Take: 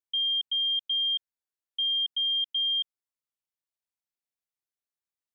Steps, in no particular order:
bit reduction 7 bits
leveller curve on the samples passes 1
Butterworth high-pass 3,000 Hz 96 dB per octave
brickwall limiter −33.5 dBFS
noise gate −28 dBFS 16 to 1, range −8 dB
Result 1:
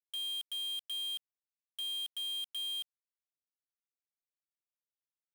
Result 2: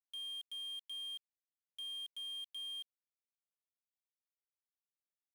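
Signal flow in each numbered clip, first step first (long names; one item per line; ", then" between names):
noise gate, then brickwall limiter, then Butterworth high-pass, then bit reduction, then leveller curve on the samples
leveller curve on the samples, then Butterworth high-pass, then bit reduction, then brickwall limiter, then noise gate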